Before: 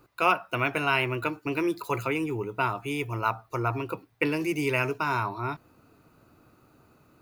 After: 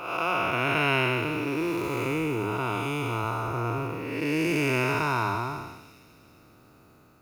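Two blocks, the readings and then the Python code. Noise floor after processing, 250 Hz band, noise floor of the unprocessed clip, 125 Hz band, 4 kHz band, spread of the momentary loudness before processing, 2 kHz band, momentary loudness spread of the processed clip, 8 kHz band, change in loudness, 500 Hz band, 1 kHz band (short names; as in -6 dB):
-56 dBFS, +2.0 dB, -63 dBFS, +3.0 dB, +3.0 dB, 7 LU, +1.0 dB, 7 LU, +3.5 dB, +1.0 dB, +1.0 dB, 0.0 dB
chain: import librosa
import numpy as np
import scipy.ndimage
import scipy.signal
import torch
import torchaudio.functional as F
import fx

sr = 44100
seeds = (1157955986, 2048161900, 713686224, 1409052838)

p1 = fx.spec_blur(x, sr, span_ms=379.0)
p2 = fx.dynamic_eq(p1, sr, hz=5100.0, q=0.72, threshold_db=-48.0, ratio=4.0, max_db=4)
p3 = p2 + fx.echo_wet_highpass(p2, sr, ms=401, feedback_pct=43, hz=4600.0, wet_db=-7.5, dry=0)
y = p3 * 10.0 ** (5.0 / 20.0)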